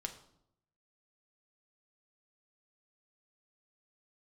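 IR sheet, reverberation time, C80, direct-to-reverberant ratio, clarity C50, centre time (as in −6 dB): 0.75 s, 14.5 dB, 4.0 dB, 11.5 dB, 12 ms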